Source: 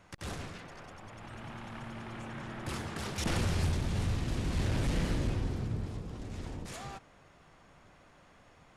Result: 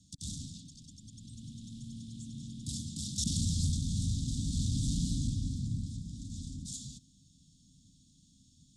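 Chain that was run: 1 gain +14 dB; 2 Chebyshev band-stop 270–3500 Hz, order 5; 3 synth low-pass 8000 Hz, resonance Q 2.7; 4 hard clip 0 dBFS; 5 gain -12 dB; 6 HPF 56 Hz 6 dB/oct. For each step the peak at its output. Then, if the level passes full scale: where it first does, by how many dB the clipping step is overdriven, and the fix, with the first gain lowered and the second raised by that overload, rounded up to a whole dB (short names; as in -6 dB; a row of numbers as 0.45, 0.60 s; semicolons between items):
-10.0, -8.0, -6.0, -6.0, -18.0, -19.0 dBFS; no overload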